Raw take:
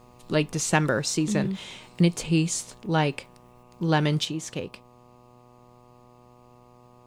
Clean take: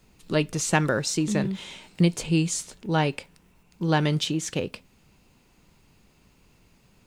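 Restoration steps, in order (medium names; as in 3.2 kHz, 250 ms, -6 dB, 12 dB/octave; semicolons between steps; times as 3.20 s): de-hum 122.3 Hz, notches 10; trim 0 dB, from 4.25 s +4.5 dB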